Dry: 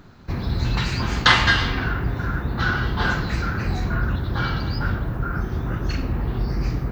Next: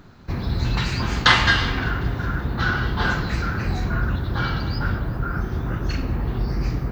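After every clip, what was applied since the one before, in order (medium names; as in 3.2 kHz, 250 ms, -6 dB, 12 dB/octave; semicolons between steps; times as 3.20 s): thinning echo 189 ms, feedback 69%, level -21.5 dB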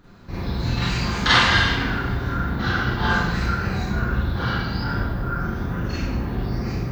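Schroeder reverb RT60 0.71 s, combs from 32 ms, DRR -8 dB; trim -7.5 dB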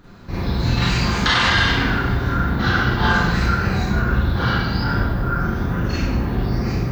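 loudness maximiser +10.5 dB; trim -6 dB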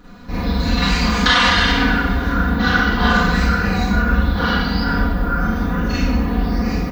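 comb 4.1 ms, depth 99%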